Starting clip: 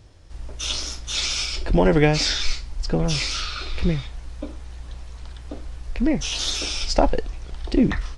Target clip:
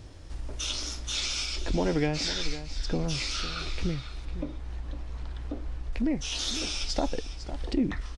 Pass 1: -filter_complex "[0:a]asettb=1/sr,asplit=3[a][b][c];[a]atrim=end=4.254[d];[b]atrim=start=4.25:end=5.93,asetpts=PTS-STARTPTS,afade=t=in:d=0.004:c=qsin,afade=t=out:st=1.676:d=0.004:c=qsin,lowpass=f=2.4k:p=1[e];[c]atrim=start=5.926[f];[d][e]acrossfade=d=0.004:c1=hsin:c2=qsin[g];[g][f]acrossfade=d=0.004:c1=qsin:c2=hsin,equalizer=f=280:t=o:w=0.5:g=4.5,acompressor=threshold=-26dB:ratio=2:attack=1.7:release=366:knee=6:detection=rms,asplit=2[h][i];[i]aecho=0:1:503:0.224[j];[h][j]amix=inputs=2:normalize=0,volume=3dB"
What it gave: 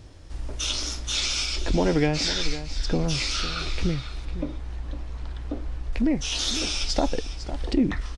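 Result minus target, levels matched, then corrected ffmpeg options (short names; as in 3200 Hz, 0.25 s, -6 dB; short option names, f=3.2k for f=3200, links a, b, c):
compressor: peak gain reduction -5 dB
-filter_complex "[0:a]asettb=1/sr,asplit=3[a][b][c];[a]atrim=end=4.254[d];[b]atrim=start=4.25:end=5.93,asetpts=PTS-STARTPTS,afade=t=in:d=0.004:c=qsin,afade=t=out:st=1.676:d=0.004:c=qsin,lowpass=f=2.4k:p=1[e];[c]atrim=start=5.926[f];[d][e]acrossfade=d=0.004:c1=hsin:c2=qsin[g];[g][f]acrossfade=d=0.004:c1=qsin:c2=hsin,equalizer=f=280:t=o:w=0.5:g=4.5,acompressor=threshold=-35.5dB:ratio=2:attack=1.7:release=366:knee=6:detection=rms,asplit=2[h][i];[i]aecho=0:1:503:0.224[j];[h][j]amix=inputs=2:normalize=0,volume=3dB"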